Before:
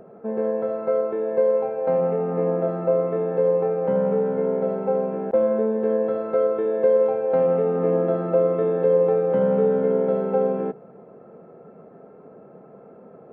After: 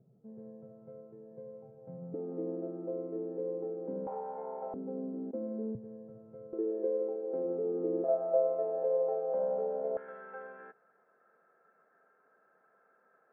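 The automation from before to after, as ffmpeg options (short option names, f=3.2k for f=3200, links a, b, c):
-af "asetnsamples=n=441:p=0,asendcmd='2.14 bandpass f 310;4.07 bandpass f 850;4.74 bandpass f 270;5.75 bandpass f 120;6.53 bandpass f 350;8.04 bandpass f 660;9.97 bandpass f 1600',bandpass=f=130:t=q:w=7.4:csg=0"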